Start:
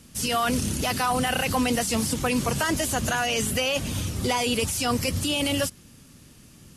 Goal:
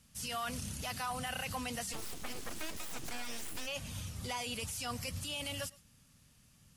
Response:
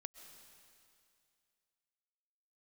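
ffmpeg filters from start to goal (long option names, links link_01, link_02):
-filter_complex "[0:a]equalizer=frequency=340:width_type=o:width=0.91:gain=-12.5,asplit=3[link_01][link_02][link_03];[link_01]afade=type=out:start_time=1.92:duration=0.02[link_04];[link_02]aeval=exprs='abs(val(0))':channel_layout=same,afade=type=in:start_time=1.92:duration=0.02,afade=type=out:start_time=3.66:duration=0.02[link_05];[link_03]afade=type=in:start_time=3.66:duration=0.02[link_06];[link_04][link_05][link_06]amix=inputs=3:normalize=0[link_07];[1:a]atrim=start_sample=2205,afade=type=out:start_time=0.17:duration=0.01,atrim=end_sample=7938[link_08];[link_07][link_08]afir=irnorm=-1:irlink=0,volume=-7dB"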